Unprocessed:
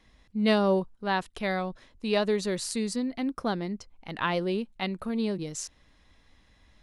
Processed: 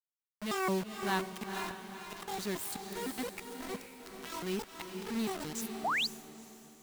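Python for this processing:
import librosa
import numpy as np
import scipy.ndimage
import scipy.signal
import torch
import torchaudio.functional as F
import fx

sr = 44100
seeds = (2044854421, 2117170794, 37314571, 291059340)

p1 = fx.pitch_trill(x, sr, semitones=11.0, every_ms=170)
p2 = scipy.signal.sosfilt(scipy.signal.butter(4, 74.0, 'highpass', fs=sr, output='sos'), p1)
p3 = fx.peak_eq(p2, sr, hz=550.0, db=-10.5, octaves=0.49)
p4 = fx.auto_swell(p3, sr, attack_ms=355.0)
p5 = fx.quant_dither(p4, sr, seeds[0], bits=6, dither='none')
p6 = p5 + fx.echo_diffused(p5, sr, ms=477, feedback_pct=42, wet_db=-6.0, dry=0)
p7 = fx.spec_paint(p6, sr, seeds[1], shape='rise', start_s=5.84, length_s=0.23, low_hz=610.0, high_hz=5100.0, level_db=-26.0)
y = p7 * 10.0 ** (-5.0 / 20.0)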